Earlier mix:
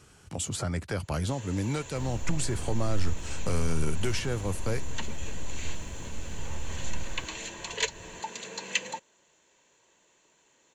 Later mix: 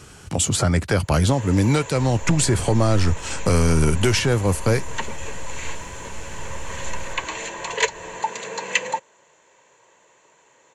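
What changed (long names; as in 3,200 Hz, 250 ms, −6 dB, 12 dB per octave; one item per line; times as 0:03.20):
speech +12.0 dB
first sound: add octave-band graphic EQ 125/500/1,000/2,000/8,000 Hz +8/+10/+10/+8/+6 dB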